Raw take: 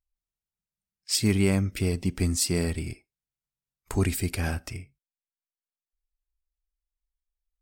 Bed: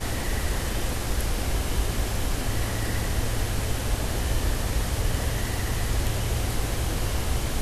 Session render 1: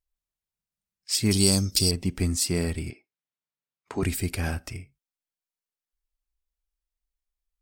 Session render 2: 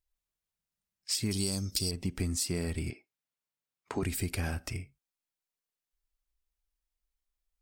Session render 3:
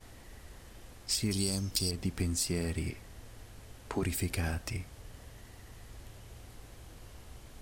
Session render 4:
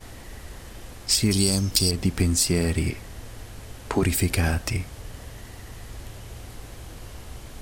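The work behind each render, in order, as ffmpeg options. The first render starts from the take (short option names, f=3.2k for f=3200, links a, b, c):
-filter_complex "[0:a]asettb=1/sr,asplit=3[a][b][c];[a]atrim=end=1.314[d];[b]atrim=start=1.31:end=1.91,asetpts=PTS-STARTPTS,afade=t=in:d=0.004:c=qsin,afade=t=out:st=0.596:d=0.004:c=qsin,highshelf=f=3.2k:t=q:w=3:g=14[e];[c]atrim=start=1.906[f];[d][e]acrossfade=d=0.004:c1=hsin:c2=qsin[g];[g][f]acrossfade=d=0.004:c1=qsin:c2=hsin,asettb=1/sr,asplit=3[h][i][j];[h]atrim=end=2.904[k];[i]atrim=start=2.9:end=4.03,asetpts=PTS-STARTPTS,afade=t=in:d=0.004:c=qsin,afade=t=out:st=1.126:d=0.004:c=qsin,highpass=220,lowpass=4k[l];[j]atrim=start=4.026[m];[k][l]acrossfade=d=0.004:c1=hsin:c2=qsin[n];[n][m]acrossfade=d=0.004:c1=qsin:c2=hsin"
-af "acompressor=threshold=-29dB:ratio=6"
-filter_complex "[1:a]volume=-24dB[a];[0:a][a]amix=inputs=2:normalize=0"
-af "volume=10.5dB"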